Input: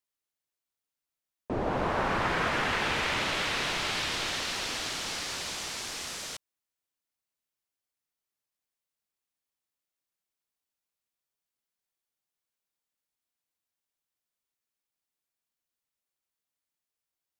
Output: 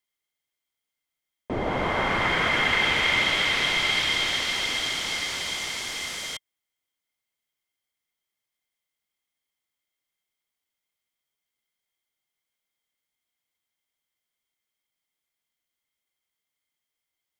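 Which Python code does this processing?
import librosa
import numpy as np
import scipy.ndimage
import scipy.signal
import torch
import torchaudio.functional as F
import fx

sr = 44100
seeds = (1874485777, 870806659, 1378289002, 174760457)

y = fx.small_body(x, sr, hz=(2100.0, 3200.0), ring_ms=35, db=16)
y = y * librosa.db_to_amplitude(2.5)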